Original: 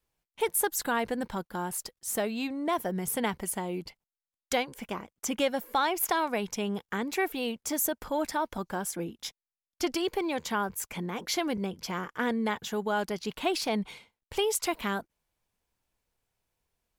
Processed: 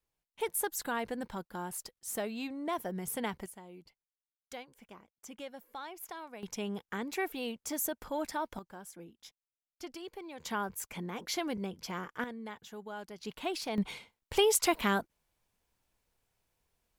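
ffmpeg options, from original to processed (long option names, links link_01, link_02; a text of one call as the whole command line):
ffmpeg -i in.wav -af "asetnsamples=nb_out_samples=441:pad=0,asendcmd='3.46 volume volume -17dB;6.43 volume volume -5.5dB;8.59 volume volume -15dB;10.4 volume volume -5dB;12.24 volume volume -14dB;13.19 volume volume -7dB;13.78 volume volume 2dB',volume=-6dB" out.wav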